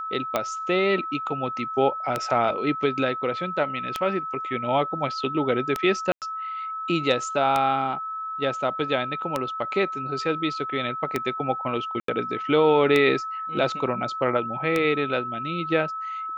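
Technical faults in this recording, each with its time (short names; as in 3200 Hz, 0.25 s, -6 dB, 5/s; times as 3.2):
tick 33 1/3 rpm -9 dBFS
tone 1300 Hz -29 dBFS
6.12–6.22 gap 98 ms
12–12.08 gap 83 ms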